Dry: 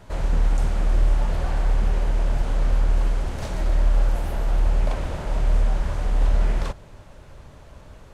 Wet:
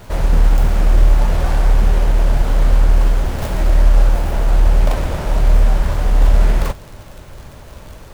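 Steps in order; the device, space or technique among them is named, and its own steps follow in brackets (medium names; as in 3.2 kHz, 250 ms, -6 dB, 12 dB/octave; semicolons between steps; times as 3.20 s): record under a worn stylus (tracing distortion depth 0.44 ms; crackle; pink noise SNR 37 dB); trim +8 dB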